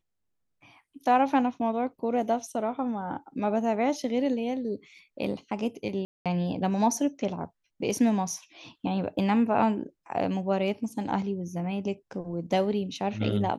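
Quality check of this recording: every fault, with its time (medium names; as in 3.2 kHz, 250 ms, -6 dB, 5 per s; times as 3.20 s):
6.05–6.26 s: dropout 207 ms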